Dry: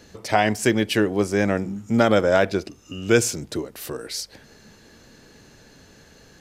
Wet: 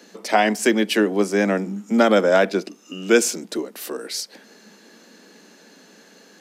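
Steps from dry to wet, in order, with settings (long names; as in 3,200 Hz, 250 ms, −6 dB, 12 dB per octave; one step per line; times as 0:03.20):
Butterworth high-pass 180 Hz 72 dB per octave
level +2 dB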